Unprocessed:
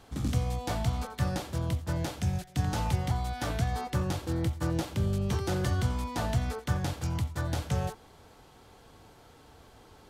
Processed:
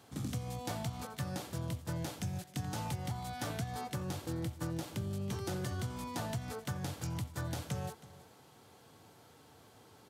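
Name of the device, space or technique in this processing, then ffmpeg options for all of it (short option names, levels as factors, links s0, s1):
ASMR close-microphone chain: -af "highpass=f=99:w=0.5412,highpass=f=99:w=1.3066,lowshelf=f=170:g=3.5,acompressor=threshold=0.0355:ratio=6,highshelf=f=6900:g=7,aecho=1:1:321:0.126,volume=0.562"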